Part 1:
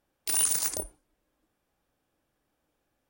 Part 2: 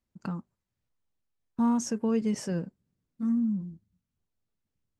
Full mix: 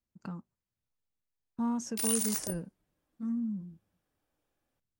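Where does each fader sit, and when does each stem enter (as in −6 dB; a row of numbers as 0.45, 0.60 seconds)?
−5.5, −6.5 decibels; 1.70, 0.00 seconds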